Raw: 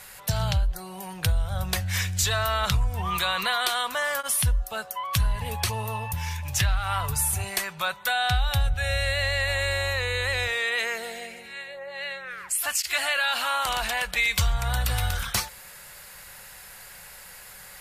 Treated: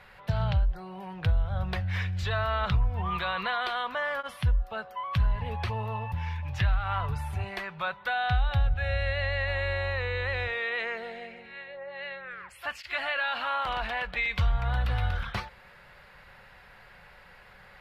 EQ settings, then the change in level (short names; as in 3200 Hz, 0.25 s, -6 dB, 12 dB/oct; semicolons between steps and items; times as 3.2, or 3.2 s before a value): air absorption 370 m; -1.0 dB